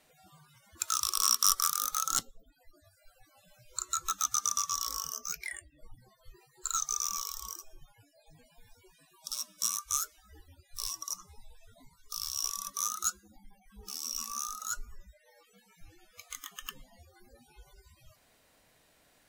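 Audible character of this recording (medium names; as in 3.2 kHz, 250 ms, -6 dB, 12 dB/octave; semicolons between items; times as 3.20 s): noise floor -67 dBFS; spectral tilt +1.0 dB/octave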